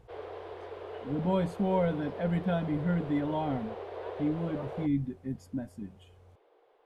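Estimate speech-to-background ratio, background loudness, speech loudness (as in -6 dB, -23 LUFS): 10.0 dB, -42.0 LUFS, -32.0 LUFS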